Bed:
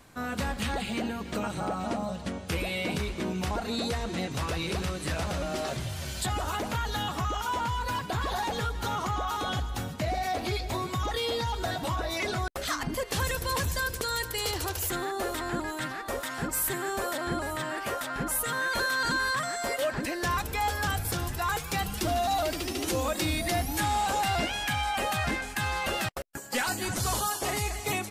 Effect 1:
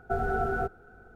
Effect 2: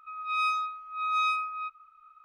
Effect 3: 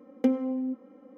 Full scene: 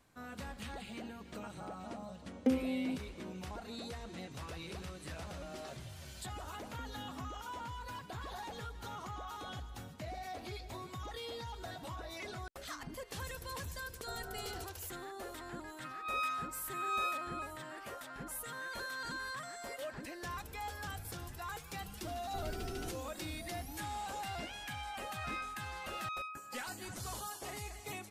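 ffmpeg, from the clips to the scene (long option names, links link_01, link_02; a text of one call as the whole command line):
ffmpeg -i bed.wav -i cue0.wav -i cue1.wav -i cue2.wav -filter_complex "[3:a]asplit=2[link_01][link_02];[1:a]asplit=2[link_03][link_04];[2:a]asplit=2[link_05][link_06];[0:a]volume=-14dB[link_07];[link_02]acompressor=threshold=-40dB:ratio=6:attack=3.2:release=140:knee=1:detection=peak[link_08];[link_04]acrossover=split=330|3000[link_09][link_10][link_11];[link_10]acompressor=threshold=-38dB:ratio=6:attack=3.2:release=140:knee=2.83:detection=peak[link_12];[link_09][link_12][link_11]amix=inputs=3:normalize=0[link_13];[link_01]atrim=end=1.17,asetpts=PTS-STARTPTS,volume=-6dB,afade=type=in:duration=0.004:curve=hsin,afade=type=out:start_time=1.166:duration=0.004:curve=hsin,adelay=2220[link_14];[link_08]atrim=end=1.17,asetpts=PTS-STARTPTS,volume=-10.5dB,afade=type=in:duration=0.004:curve=hsin,afade=type=out:start_time=1.166:duration=0.004:curve=hsin,adelay=6550[link_15];[link_03]atrim=end=1.15,asetpts=PTS-STARTPTS,volume=-18dB,afade=type=in:duration=0.004:curve=hsin,afade=type=out:start_time=1.146:duration=0.004:curve=hsin,adelay=13970[link_16];[link_05]atrim=end=2.24,asetpts=PTS-STARTPTS,volume=-8.5dB,afade=type=in:duration=0.004:curve=hsin,afade=type=out:start_time=2.236:duration=0.004:curve=hsin,adelay=15770[link_17];[link_13]atrim=end=1.15,asetpts=PTS-STARTPTS,volume=-9.5dB,afade=type=in:duration=0.004:curve=hsin,afade=type=out:start_time=1.146:duration=0.004:curve=hsin,adelay=22240[link_18];[link_06]atrim=end=2.24,asetpts=PTS-STARTPTS,volume=-15dB,afade=type=in:duration=0.004:curve=hsin,afade=type=out:start_time=2.236:duration=0.004:curve=hsin,adelay=24920[link_19];[link_07][link_14][link_15][link_16][link_17][link_18][link_19]amix=inputs=7:normalize=0" out.wav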